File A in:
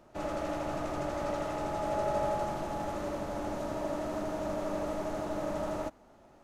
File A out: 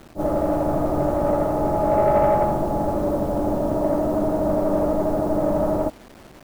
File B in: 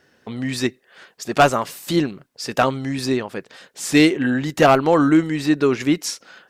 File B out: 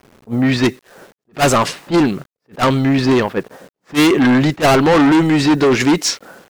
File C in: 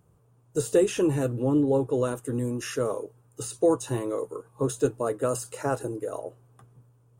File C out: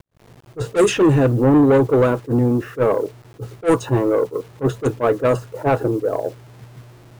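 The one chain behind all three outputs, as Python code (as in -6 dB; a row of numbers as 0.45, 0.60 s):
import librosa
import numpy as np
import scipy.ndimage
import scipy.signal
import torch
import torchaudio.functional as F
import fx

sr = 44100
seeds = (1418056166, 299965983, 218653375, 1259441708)

y = fx.env_lowpass(x, sr, base_hz=400.0, full_db=-16.0)
y = fx.quant_dither(y, sr, seeds[0], bits=10, dither='none')
y = 10.0 ** (-23.0 / 20.0) * np.tanh(y / 10.0 ** (-23.0 / 20.0))
y = fx.attack_slew(y, sr, db_per_s=370.0)
y = y * 10.0 ** (-9 / 20.0) / np.max(np.abs(y))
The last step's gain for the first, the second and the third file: +15.0, +14.0, +14.0 dB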